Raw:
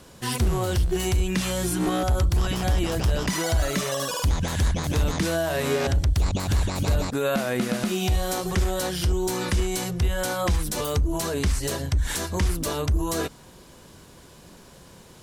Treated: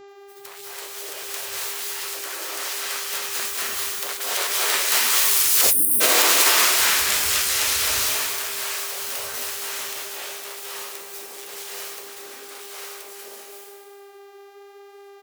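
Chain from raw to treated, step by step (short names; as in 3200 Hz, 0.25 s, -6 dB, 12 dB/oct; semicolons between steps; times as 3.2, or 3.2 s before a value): self-modulated delay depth 0.7 ms; Doppler pass-by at 5.71, 24 m/s, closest 12 m; dynamic EQ 230 Hz, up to +8 dB, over -54 dBFS, Q 0.84; spectral gate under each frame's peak -30 dB weak; reverb RT60 1.8 s, pre-delay 0.179 s, DRR -6.5 dB; spectral delete 5.63–5.93, 340–8500 Hz; HPF 55 Hz 24 dB/oct; bell 800 Hz -5.5 dB 0.29 oct; bands offset in time lows, highs 80 ms, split 150 Hz; buzz 400 Hz, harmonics 19, -64 dBFS -8 dB/oct; flange 0.93 Hz, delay 9.4 ms, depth 7 ms, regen -62%; maximiser +27.5 dB; gain -4.5 dB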